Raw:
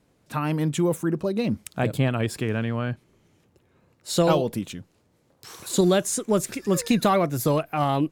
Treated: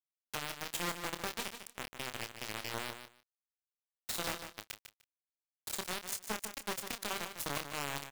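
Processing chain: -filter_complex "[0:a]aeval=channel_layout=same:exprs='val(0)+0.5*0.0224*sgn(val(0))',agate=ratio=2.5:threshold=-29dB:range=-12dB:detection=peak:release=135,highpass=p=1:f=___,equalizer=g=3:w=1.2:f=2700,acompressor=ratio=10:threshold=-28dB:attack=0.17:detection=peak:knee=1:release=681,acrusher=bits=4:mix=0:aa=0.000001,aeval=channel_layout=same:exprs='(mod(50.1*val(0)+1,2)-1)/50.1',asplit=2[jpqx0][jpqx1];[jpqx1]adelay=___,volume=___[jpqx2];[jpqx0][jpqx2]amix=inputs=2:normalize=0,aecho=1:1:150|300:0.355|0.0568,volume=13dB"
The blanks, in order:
690, 28, -9dB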